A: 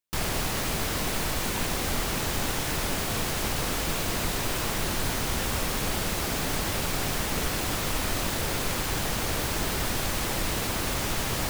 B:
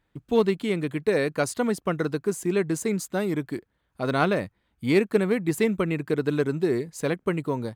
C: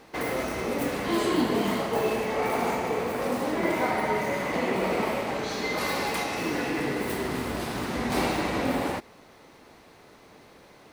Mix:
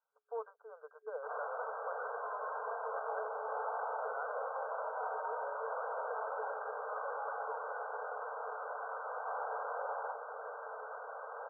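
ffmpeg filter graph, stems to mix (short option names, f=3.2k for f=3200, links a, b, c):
-filter_complex "[0:a]adelay=1100,volume=-9.5dB[a];[1:a]volume=-9dB[b];[2:a]adelay=1150,volume=-6dB[c];[b][c]amix=inputs=2:normalize=0,highpass=690,alimiter=level_in=5dB:limit=-24dB:level=0:latency=1:release=27,volume=-5dB,volume=0dB[d];[a][d]amix=inputs=2:normalize=0,afftfilt=real='re*between(b*sr/4096,420,1600)':imag='im*between(b*sr/4096,420,1600)':win_size=4096:overlap=0.75"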